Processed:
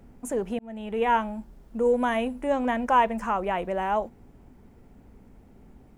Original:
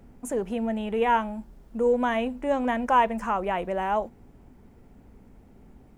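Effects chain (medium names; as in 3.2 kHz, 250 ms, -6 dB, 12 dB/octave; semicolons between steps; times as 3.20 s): 0.59–1.22 s: fade in equal-power; 1.85–2.47 s: peaking EQ 10 kHz +11 dB 0.37 oct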